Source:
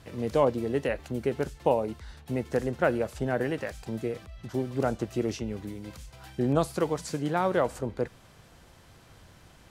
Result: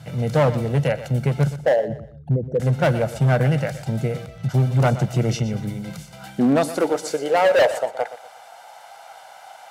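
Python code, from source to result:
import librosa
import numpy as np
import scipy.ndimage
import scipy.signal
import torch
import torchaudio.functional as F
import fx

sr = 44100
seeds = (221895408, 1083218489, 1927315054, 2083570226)

p1 = fx.envelope_sharpen(x, sr, power=3.0, at=(1.56, 2.6))
p2 = fx.peak_eq(p1, sr, hz=240.0, db=-4.5, octaves=0.54)
p3 = p2 + 0.6 * np.pad(p2, (int(1.4 * sr / 1000.0), 0))[:len(p2)]
p4 = fx.rider(p3, sr, range_db=4, speed_s=2.0)
p5 = p3 + F.gain(torch.from_numpy(p4), 0.0).numpy()
p6 = fx.filter_sweep_highpass(p5, sr, from_hz=140.0, to_hz=780.0, start_s=5.77, end_s=8.07, q=4.3)
p7 = np.clip(p6, -10.0 ** (-13.0 / 20.0), 10.0 ** (-13.0 / 20.0))
p8 = scipy.signal.sosfilt(scipy.signal.butter(2, 44.0, 'highpass', fs=sr, output='sos'), p7)
y = p8 + fx.echo_feedback(p8, sr, ms=121, feedback_pct=32, wet_db=-14, dry=0)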